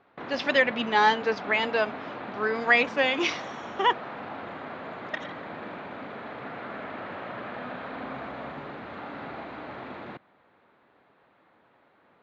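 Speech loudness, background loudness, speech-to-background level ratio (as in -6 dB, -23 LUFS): -25.0 LUFS, -38.0 LUFS, 13.0 dB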